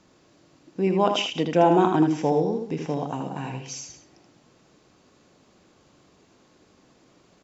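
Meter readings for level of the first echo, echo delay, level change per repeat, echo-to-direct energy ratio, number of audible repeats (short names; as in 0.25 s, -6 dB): -5.5 dB, 79 ms, no steady repeat, -5.0 dB, 3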